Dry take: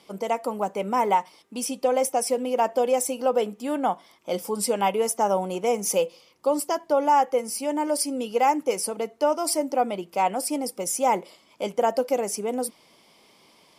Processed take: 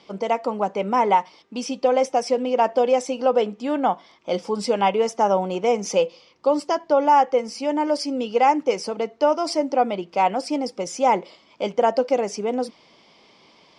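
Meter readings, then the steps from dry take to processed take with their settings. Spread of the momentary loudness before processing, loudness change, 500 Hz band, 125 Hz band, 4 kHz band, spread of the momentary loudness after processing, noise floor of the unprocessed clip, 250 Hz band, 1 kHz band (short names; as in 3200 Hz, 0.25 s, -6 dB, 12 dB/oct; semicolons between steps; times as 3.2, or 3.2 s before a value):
7 LU, +3.0 dB, +3.5 dB, n/a, +2.5 dB, 8 LU, -58 dBFS, +3.5 dB, +3.5 dB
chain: LPF 5700 Hz 24 dB/oct; gain +3.5 dB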